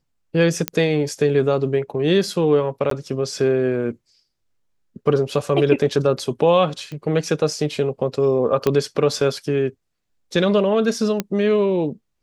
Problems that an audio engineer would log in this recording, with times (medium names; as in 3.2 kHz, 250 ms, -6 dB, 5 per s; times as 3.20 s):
0.68 s: pop -3 dBFS
2.90–2.91 s: dropout 13 ms
6.92 s: pop -21 dBFS
8.67 s: pop -6 dBFS
11.20 s: pop -7 dBFS